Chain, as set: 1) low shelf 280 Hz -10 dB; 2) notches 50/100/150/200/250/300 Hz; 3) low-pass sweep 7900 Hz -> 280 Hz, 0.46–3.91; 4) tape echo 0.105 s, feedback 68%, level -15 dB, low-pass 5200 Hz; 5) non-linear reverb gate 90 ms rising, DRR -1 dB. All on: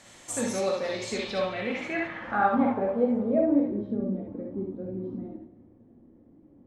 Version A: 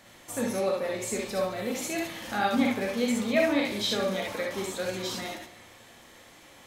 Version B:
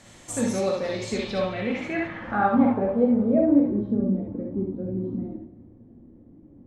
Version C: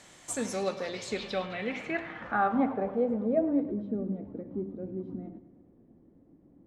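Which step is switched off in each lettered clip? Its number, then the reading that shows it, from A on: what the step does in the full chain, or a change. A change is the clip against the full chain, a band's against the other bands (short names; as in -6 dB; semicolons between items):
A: 3, 4 kHz band +9.5 dB; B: 1, 125 Hz band +5.5 dB; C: 5, loudness change -3.5 LU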